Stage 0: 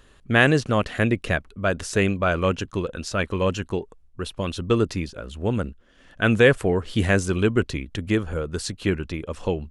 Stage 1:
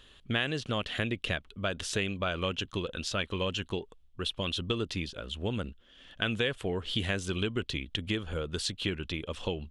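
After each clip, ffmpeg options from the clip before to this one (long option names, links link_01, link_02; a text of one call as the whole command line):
ffmpeg -i in.wav -af "equalizer=frequency=3300:width_type=o:width=0.77:gain=14,acompressor=threshold=-22dB:ratio=4,volume=-6dB" out.wav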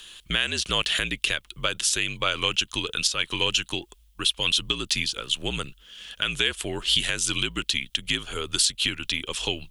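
ffmpeg -i in.wav -af "crystalizer=i=10:c=0,alimiter=limit=-9.5dB:level=0:latency=1:release=261,afreqshift=-60" out.wav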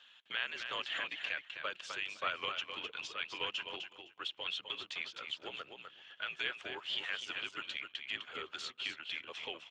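ffmpeg -i in.wav -af "highpass=590,lowpass=2200,aecho=1:1:256|512|768:0.447|0.0804|0.0145,volume=-7.5dB" -ar 32000 -c:a libspeex -b:a 15k out.spx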